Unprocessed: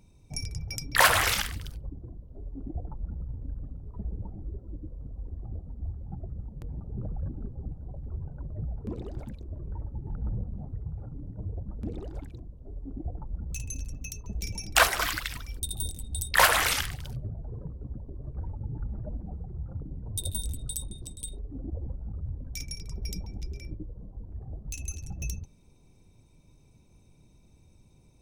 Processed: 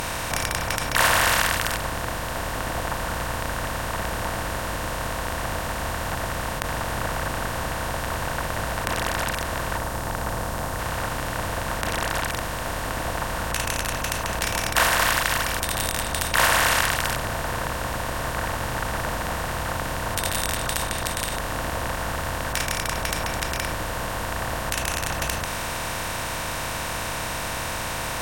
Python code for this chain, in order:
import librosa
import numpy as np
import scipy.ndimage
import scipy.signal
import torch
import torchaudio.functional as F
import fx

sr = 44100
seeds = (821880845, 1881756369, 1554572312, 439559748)

y = fx.bin_compress(x, sr, power=0.2)
y = fx.peak_eq(y, sr, hz=2500.0, db=-5.0, octaves=1.7, at=(9.77, 10.79))
y = fx.end_taper(y, sr, db_per_s=110.0)
y = F.gain(torch.from_numpy(y), -4.5).numpy()